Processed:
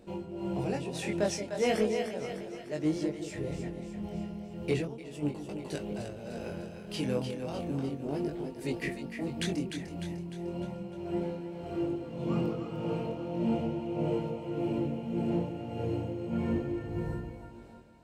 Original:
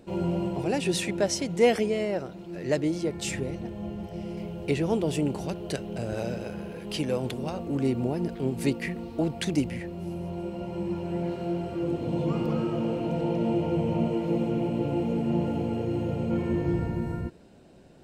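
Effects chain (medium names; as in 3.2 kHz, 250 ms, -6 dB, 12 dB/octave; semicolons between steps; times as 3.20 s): tremolo 1.7 Hz, depth 82%; on a send: two-band feedback delay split 510 Hz, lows 174 ms, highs 301 ms, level -7 dB; 4.85–5.49 s: on the sum: gate -25 dBFS, range -8 dB; chorus 0.35 Hz, delay 19.5 ms, depth 4.8 ms; in parallel at -6 dB: hard clipper -24 dBFS, distortion -19 dB; on the sum: trim -3 dB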